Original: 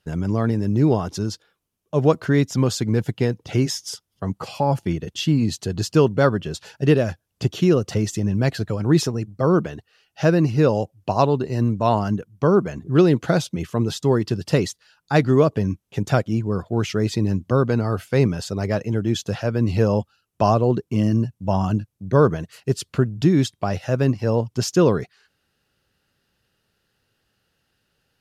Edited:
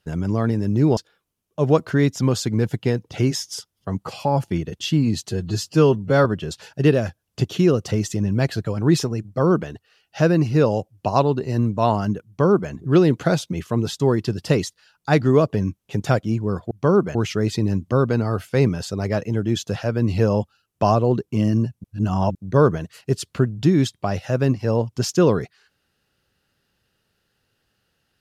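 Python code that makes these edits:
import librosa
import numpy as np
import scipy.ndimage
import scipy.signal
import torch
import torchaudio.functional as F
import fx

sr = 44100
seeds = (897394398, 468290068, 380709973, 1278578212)

y = fx.edit(x, sr, fx.cut(start_s=0.97, length_s=0.35),
    fx.stretch_span(start_s=5.64, length_s=0.64, factor=1.5),
    fx.duplicate(start_s=12.3, length_s=0.44, to_s=16.74),
    fx.reverse_span(start_s=21.43, length_s=0.51), tone=tone)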